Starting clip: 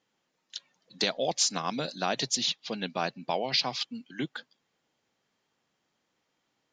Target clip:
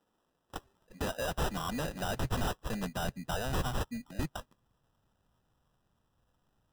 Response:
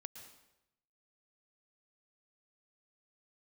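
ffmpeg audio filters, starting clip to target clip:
-af "acrusher=samples=20:mix=1:aa=0.000001,volume=30.5dB,asoftclip=hard,volume=-30.5dB,asubboost=boost=6:cutoff=130"

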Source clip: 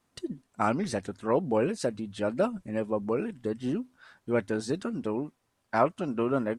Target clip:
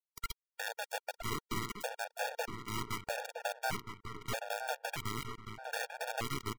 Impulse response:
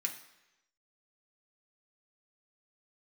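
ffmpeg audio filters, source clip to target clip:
-filter_complex "[0:a]afftfilt=real='real(if(between(b,1,1008),(2*floor((b-1)/48)+1)*48-b,b),0)':imag='imag(if(between(b,1,1008),(2*floor((b-1)/48)+1)*48-b,b),0)*if(between(b,1,1008),-1,1)':win_size=2048:overlap=0.75,lowpass=9.4k,bandreject=f=910:w=20,acompressor=threshold=-33dB:ratio=16,aeval=exprs='(tanh(25.1*val(0)+0.2)-tanh(0.2))/25.1':c=same,acrusher=bits=3:dc=4:mix=0:aa=0.000001,asplit=2[a][b];[b]adelay=965,lowpass=f=2.5k:p=1,volume=-6dB,asplit=2[c][d];[d]adelay=965,lowpass=f=2.5k:p=1,volume=0.43,asplit=2[e][f];[f]adelay=965,lowpass=f=2.5k:p=1,volume=0.43,asplit=2[g][h];[h]adelay=965,lowpass=f=2.5k:p=1,volume=0.43,asplit=2[i][j];[j]adelay=965,lowpass=f=2.5k:p=1,volume=0.43[k];[c][e][g][i][k]amix=inputs=5:normalize=0[l];[a][l]amix=inputs=2:normalize=0,afftfilt=real='re*gt(sin(2*PI*0.8*pts/sr)*(1-2*mod(floor(b*sr/1024/470),2)),0)':imag='im*gt(sin(2*PI*0.8*pts/sr)*(1-2*mod(floor(b*sr/1024/470),2)),0)':win_size=1024:overlap=0.75,volume=6dB"

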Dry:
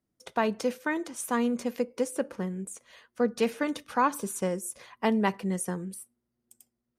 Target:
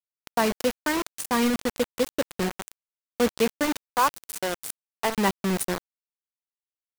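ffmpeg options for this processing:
-filter_complex "[0:a]asettb=1/sr,asplit=3[a][b][c];[a]atrim=end=3.844[d];[b]atrim=start=3.84:end=5.18,asetpts=PTS-STARTPTS,afade=t=in:d=0.004:c=qsin,afade=t=out:st=1.336:d=0.004:c=qsin,highpass=490[e];[c]atrim=start=5.176[f];[d][e]acrossfade=d=0.004:c1=hsin:c2=qsin[g];[g][f]acrossfade=d=0.004:c1=qsin:c2=hsin,acrusher=bits=4:mix=0:aa=0.000001,volume=3dB"

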